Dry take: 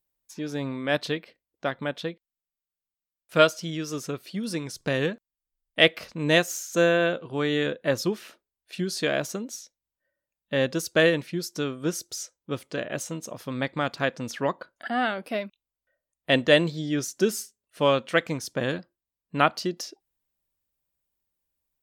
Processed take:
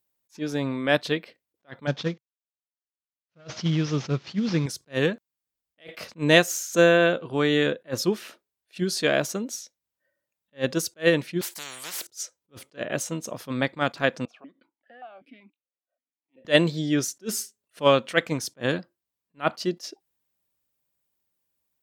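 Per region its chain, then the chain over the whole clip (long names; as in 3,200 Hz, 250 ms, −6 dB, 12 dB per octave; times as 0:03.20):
0:01.87–0:04.66: variable-slope delta modulation 32 kbit/s + parametric band 140 Hz +10.5 dB 0.84 octaves + highs frequency-modulated by the lows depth 0.13 ms
0:11.41–0:12.07: high-pass filter 1,200 Hz + every bin compressed towards the loudest bin 10 to 1
0:14.25–0:16.45: downward compressor 16 to 1, threshold −34 dBFS + formant filter that steps through the vowels 5.2 Hz
whole clip: high-pass filter 96 Hz; level that may rise only so fast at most 380 dB per second; level +3.5 dB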